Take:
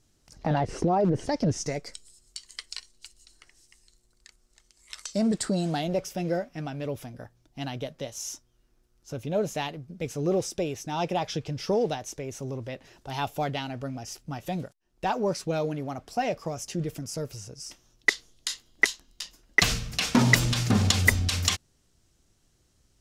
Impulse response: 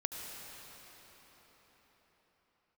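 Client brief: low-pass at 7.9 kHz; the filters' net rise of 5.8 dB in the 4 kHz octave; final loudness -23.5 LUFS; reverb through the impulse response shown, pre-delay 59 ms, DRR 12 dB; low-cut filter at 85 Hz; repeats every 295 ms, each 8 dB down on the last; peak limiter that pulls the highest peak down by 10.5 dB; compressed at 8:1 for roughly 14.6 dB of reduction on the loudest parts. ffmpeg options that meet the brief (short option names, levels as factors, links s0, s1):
-filter_complex "[0:a]highpass=85,lowpass=7900,equalizer=f=4000:t=o:g=7.5,acompressor=threshold=0.0355:ratio=8,alimiter=limit=0.0794:level=0:latency=1,aecho=1:1:295|590|885|1180|1475:0.398|0.159|0.0637|0.0255|0.0102,asplit=2[s0][s1];[1:a]atrim=start_sample=2205,adelay=59[s2];[s1][s2]afir=irnorm=-1:irlink=0,volume=0.2[s3];[s0][s3]amix=inputs=2:normalize=0,volume=3.76"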